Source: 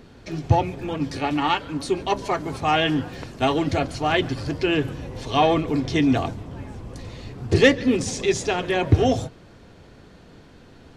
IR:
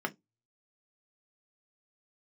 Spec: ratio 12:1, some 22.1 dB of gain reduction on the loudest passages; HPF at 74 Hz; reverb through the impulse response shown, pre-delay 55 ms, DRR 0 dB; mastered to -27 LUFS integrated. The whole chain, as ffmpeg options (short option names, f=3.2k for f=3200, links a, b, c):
-filter_complex "[0:a]highpass=74,acompressor=threshold=-33dB:ratio=12,asplit=2[a][b];[1:a]atrim=start_sample=2205,adelay=55[c];[b][c]afir=irnorm=-1:irlink=0,volume=-5.5dB[d];[a][d]amix=inputs=2:normalize=0,volume=8dB"